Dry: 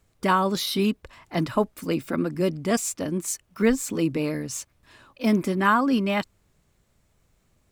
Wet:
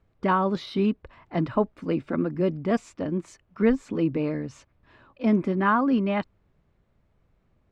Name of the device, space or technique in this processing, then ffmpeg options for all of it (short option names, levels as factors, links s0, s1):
phone in a pocket: -af "lowpass=3800,highshelf=f=2400:g=-11"